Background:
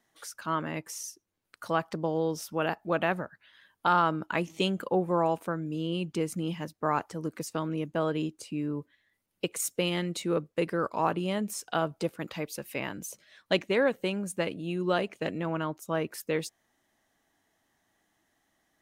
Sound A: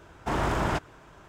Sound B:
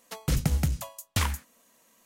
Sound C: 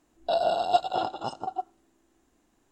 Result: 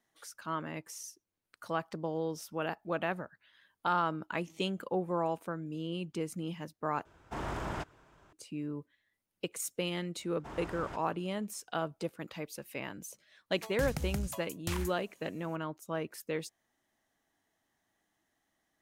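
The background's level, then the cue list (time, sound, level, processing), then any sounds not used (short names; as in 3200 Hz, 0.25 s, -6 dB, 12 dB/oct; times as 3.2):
background -6 dB
7.05 replace with A -10.5 dB
10.18 add A -17.5 dB
13.51 add B -5 dB + compressor, threshold -26 dBFS
not used: C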